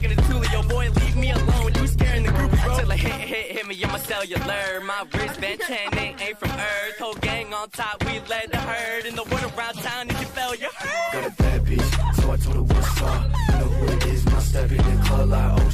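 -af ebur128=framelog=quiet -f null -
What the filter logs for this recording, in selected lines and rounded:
Integrated loudness:
  I:         -23.2 LUFS
  Threshold: -33.2 LUFS
Loudness range:
  LRA:         5.0 LU
  Threshold: -43.8 LUFS
  LRA low:   -26.3 LUFS
  LRA high:  -21.3 LUFS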